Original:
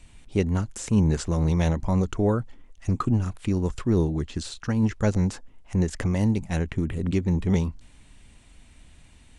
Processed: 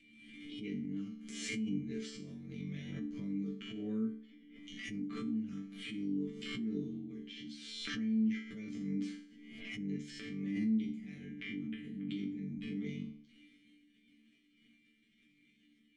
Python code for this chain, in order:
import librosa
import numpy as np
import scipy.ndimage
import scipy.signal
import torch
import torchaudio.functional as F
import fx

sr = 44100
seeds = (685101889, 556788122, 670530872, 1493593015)

y = fx.transient(x, sr, attack_db=-8, sustain_db=9)
y = fx.vowel_filter(y, sr, vowel='i')
y = fx.stretch_grains(y, sr, factor=1.7, grain_ms=45.0)
y = fx.resonator_bank(y, sr, root=50, chord='sus4', decay_s=0.49)
y = fx.pre_swell(y, sr, db_per_s=37.0)
y = F.gain(torch.from_numpy(y), 15.0).numpy()